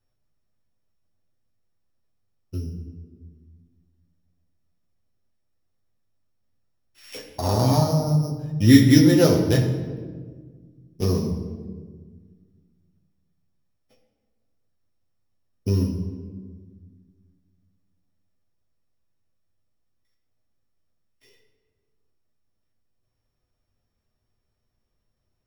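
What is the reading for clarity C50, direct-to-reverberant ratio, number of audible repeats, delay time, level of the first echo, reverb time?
6.5 dB, -1.5 dB, none, none, none, 1.6 s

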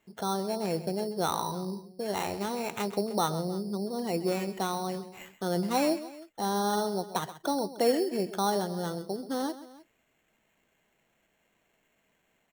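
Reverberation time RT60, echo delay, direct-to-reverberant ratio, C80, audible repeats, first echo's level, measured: none, 0.131 s, none, none, 2, -14.5 dB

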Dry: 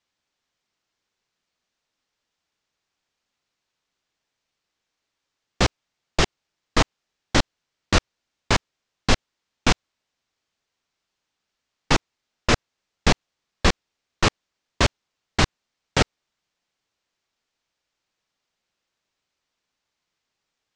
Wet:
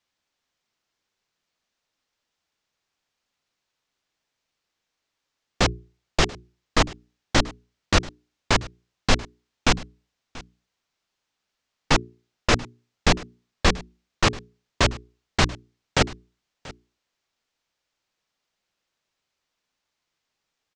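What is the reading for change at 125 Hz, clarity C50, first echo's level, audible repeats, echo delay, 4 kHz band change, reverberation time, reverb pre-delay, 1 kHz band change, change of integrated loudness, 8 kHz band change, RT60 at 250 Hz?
-0.5 dB, none, -20.5 dB, 1, 0.685 s, 0.0 dB, none, none, 0.0 dB, -0.5 dB, 0.0 dB, none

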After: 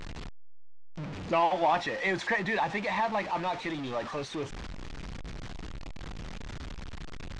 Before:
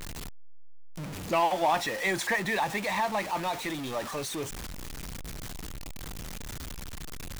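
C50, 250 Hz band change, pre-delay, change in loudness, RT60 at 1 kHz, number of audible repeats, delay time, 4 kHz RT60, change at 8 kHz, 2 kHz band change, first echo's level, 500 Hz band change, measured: none, 0.0 dB, none, +1.0 dB, none, none, none, none, -12.5 dB, -1.0 dB, none, 0.0 dB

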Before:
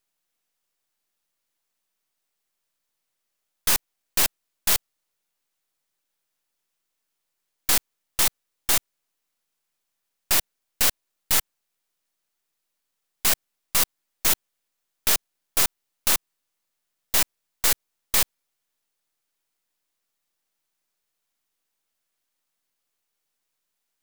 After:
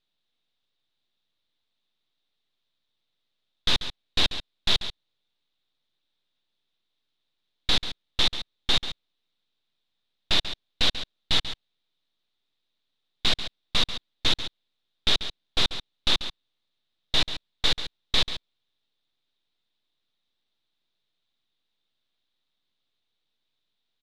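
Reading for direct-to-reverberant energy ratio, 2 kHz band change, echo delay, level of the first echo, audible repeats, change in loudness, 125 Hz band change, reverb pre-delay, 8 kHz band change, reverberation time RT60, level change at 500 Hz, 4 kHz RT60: none, -1.5 dB, 0.139 s, -11.5 dB, 1, -3.0 dB, +4.5 dB, none, -16.0 dB, none, -0.5 dB, none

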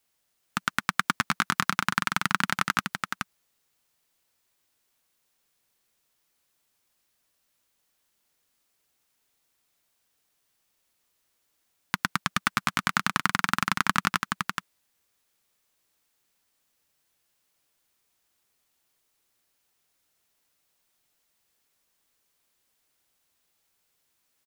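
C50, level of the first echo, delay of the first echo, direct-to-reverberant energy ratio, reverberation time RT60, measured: none, -5.0 dB, 0.424 s, none, none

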